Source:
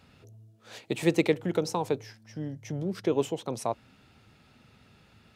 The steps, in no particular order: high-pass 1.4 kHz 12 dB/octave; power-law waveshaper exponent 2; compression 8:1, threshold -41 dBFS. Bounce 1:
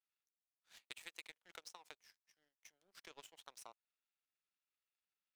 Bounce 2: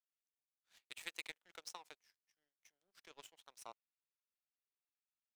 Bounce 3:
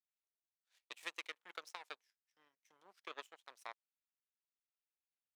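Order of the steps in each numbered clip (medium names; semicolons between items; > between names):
high-pass > compression > power-law waveshaper; high-pass > power-law waveshaper > compression; power-law waveshaper > high-pass > compression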